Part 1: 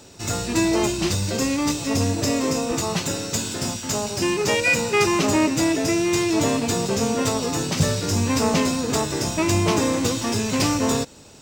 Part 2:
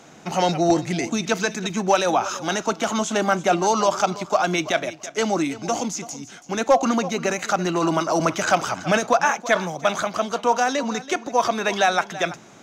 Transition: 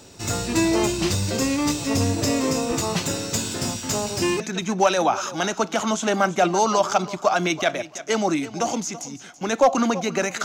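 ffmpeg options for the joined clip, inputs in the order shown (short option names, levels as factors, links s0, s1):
-filter_complex "[0:a]apad=whole_dur=10.44,atrim=end=10.44,atrim=end=4.402[s0];[1:a]atrim=start=1.478:end=7.52[s1];[s0][s1]acrossfade=d=0.004:c1=hsin:c2=hsin"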